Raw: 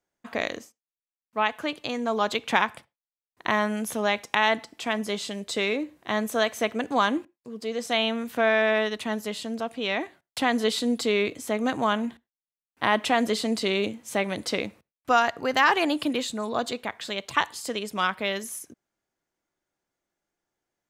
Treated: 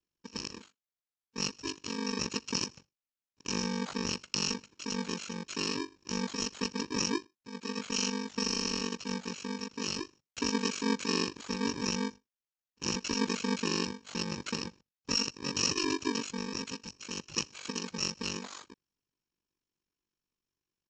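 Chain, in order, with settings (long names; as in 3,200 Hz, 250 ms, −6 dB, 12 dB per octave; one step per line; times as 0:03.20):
samples in bit-reversed order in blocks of 64 samples
ring modulation 24 Hz
downsampling to 16,000 Hz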